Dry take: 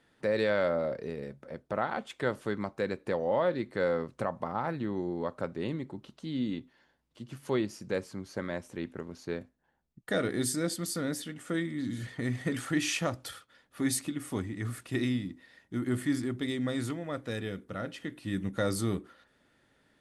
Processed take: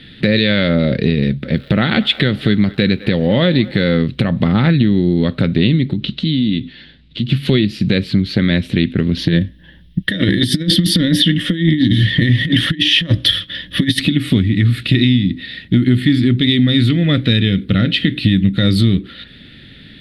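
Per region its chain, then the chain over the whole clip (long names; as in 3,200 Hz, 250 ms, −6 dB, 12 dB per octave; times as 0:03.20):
0:01.54–0:03.94: feedback echo with a band-pass in the loop 205 ms, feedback 67%, band-pass 1,100 Hz, level −18.5 dB + surface crackle 330 per second −56 dBFS
0:05.93–0:07.29: low-pass filter 8,000 Hz 24 dB per octave + downward compressor 3 to 1, threshold −45 dBFS
0:09.17–0:14.00: EQ curve with evenly spaced ripples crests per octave 1.2, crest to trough 10 dB + compressor whose output falls as the input rises −34 dBFS, ratio −0.5
whole clip: drawn EQ curve 200 Hz 0 dB, 960 Hz −26 dB, 1,900 Hz −6 dB, 3,900 Hz +4 dB, 6,300 Hz −27 dB, 11,000 Hz −20 dB; downward compressor, threshold −42 dBFS; boost into a limiter +33.5 dB; level −1 dB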